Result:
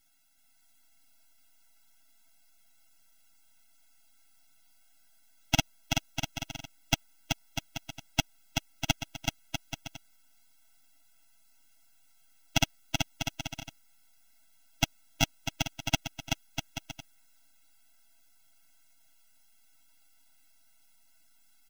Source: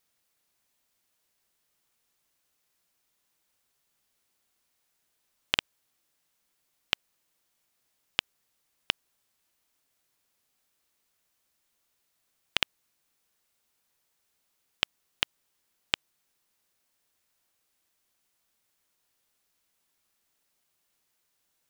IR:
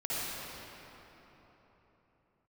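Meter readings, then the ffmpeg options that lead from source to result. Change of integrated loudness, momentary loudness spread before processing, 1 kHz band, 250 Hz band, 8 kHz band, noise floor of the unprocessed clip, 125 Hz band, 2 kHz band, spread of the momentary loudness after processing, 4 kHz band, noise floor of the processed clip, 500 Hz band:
-1.5 dB, 3 LU, +7.0 dB, +15.5 dB, +13.5 dB, -77 dBFS, +19.5 dB, +1.5 dB, 13 LU, +0.5 dB, -62 dBFS, +8.0 dB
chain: -filter_complex "[0:a]highpass=310,equalizer=f=850:t=o:w=0.24:g=-14.5,aecho=1:1:7.4:0.83,asplit=2[s0][s1];[s1]acontrast=83,volume=0.891[s2];[s0][s2]amix=inputs=2:normalize=0,alimiter=limit=0.891:level=0:latency=1:release=33,aeval=exprs='max(val(0),0)':c=same,asplit=2[s3][s4];[s4]aecho=0:1:380|646|832.2|962.5|1054:0.631|0.398|0.251|0.158|0.1[s5];[s3][s5]amix=inputs=2:normalize=0,afftfilt=real='re*eq(mod(floor(b*sr/1024/320),2),0)':imag='im*eq(mod(floor(b*sr/1024/320),2),0)':win_size=1024:overlap=0.75,volume=1.19"

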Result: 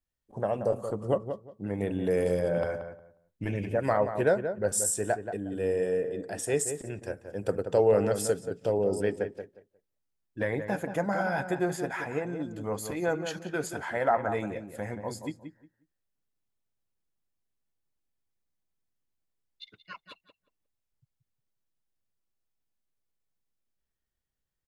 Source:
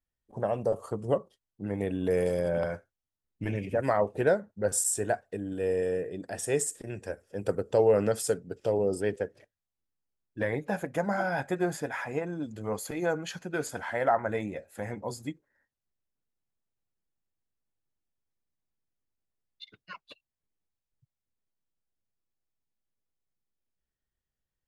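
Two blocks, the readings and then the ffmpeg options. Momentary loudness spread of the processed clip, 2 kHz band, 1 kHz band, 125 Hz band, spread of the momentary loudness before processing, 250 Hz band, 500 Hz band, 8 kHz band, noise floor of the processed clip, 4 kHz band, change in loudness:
12 LU, +0.5 dB, +0.5 dB, +0.5 dB, 12 LU, +0.5 dB, +0.5 dB, 0.0 dB, -84 dBFS, 0.0 dB, +0.5 dB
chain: -filter_complex "[0:a]asplit=2[s0][s1];[s1]adelay=179,lowpass=f=1700:p=1,volume=0.398,asplit=2[s2][s3];[s3]adelay=179,lowpass=f=1700:p=1,volume=0.21,asplit=2[s4][s5];[s5]adelay=179,lowpass=f=1700:p=1,volume=0.21[s6];[s0][s2][s4][s6]amix=inputs=4:normalize=0"

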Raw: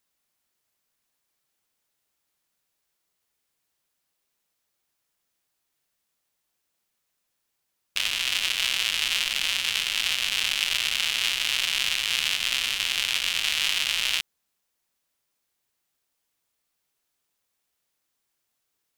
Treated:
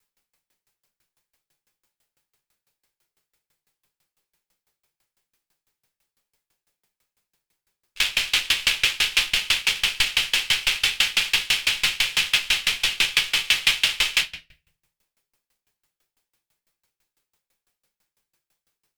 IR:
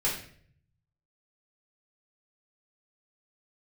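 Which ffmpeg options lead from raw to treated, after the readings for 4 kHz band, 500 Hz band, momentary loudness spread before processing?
+2.5 dB, +4.0 dB, 1 LU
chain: -filter_complex "[1:a]atrim=start_sample=2205[s0];[0:a][s0]afir=irnorm=-1:irlink=0,aeval=exprs='val(0)*pow(10,-28*if(lt(mod(6*n/s,1),2*abs(6)/1000),1-mod(6*n/s,1)/(2*abs(6)/1000),(mod(6*n/s,1)-2*abs(6)/1000)/(1-2*abs(6)/1000))/20)':c=same,volume=1.5"

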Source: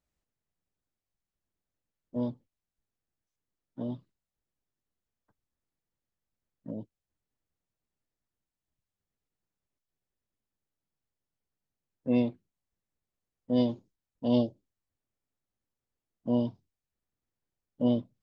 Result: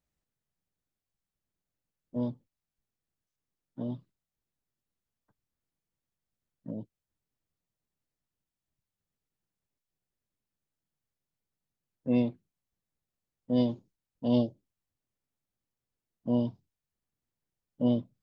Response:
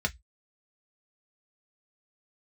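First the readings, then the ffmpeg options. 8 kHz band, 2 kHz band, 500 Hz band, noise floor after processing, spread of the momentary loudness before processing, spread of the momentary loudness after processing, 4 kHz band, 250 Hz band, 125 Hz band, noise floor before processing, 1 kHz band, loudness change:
no reading, -1.5 dB, -1.5 dB, under -85 dBFS, 14 LU, 14 LU, -1.5 dB, 0.0 dB, +1.5 dB, under -85 dBFS, -1.5 dB, -0.5 dB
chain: -af "equalizer=f=150:w=1.4:g=4,volume=0.841"

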